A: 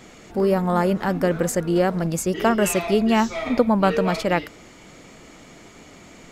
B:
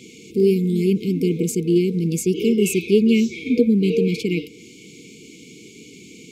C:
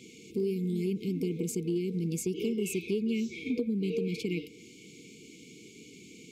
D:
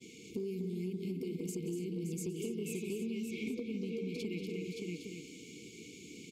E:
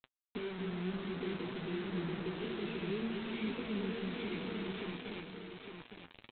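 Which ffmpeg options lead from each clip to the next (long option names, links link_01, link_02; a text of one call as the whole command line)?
ffmpeg -i in.wav -af "afftfilt=real='re*(1-between(b*sr/4096,490,2100))':imag='im*(1-between(b*sr/4096,490,2100))':win_size=4096:overlap=0.75,highpass=140,adynamicequalizer=threshold=0.00631:dfrequency=2500:dqfactor=0.7:tfrequency=2500:tqfactor=0.7:attack=5:release=100:ratio=0.375:range=3:mode=cutabove:tftype=highshelf,volume=4.5dB" out.wav
ffmpeg -i in.wav -af "acompressor=threshold=-20dB:ratio=4,volume=-8dB" out.wav
ffmpeg -i in.wav -af "aecho=1:1:179|241|296|572|811:0.178|0.473|0.188|0.422|0.211,acompressor=threshold=-34dB:ratio=6,agate=range=-33dB:threshold=-52dB:ratio=3:detection=peak,volume=-1.5dB" out.wav
ffmpeg -i in.wav -af "aresample=8000,acrusher=bits=6:mix=0:aa=0.000001,aresample=44100,flanger=delay=7.5:depth=8.9:regen=43:speed=0.62:shape=sinusoidal,aecho=1:1:858:0.501,volume=2dB" out.wav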